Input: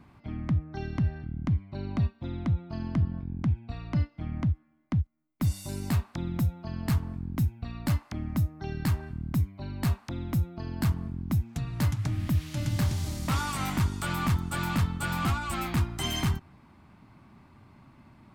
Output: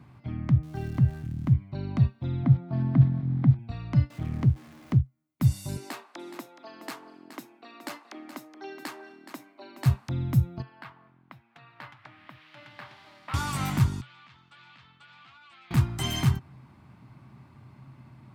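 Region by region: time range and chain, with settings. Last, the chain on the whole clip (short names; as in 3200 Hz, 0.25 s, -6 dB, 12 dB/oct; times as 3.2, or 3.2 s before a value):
0.63–1.53 switching spikes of -33.5 dBFS + LPF 1900 Hz 6 dB/oct
2.43–3.59 block floating point 5-bit + speaker cabinet 130–3300 Hz, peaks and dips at 140 Hz +8 dB, 260 Hz +7 dB, 730 Hz +6 dB, 2800 Hz -9 dB
4.1–4.97 zero-crossing step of -45 dBFS + Doppler distortion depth 0.36 ms
5.77–9.86 steep high-pass 310 Hz + high shelf 11000 Hz -10.5 dB + echo 0.422 s -11.5 dB
10.62–13.34 HPF 930 Hz + air absorption 410 m
14.01–15.71 LPF 3500 Hz 24 dB/oct + differentiator + compressor 5:1, threshold -50 dBFS
whole clip: HPF 56 Hz; bell 130 Hz +12 dB 0.29 oct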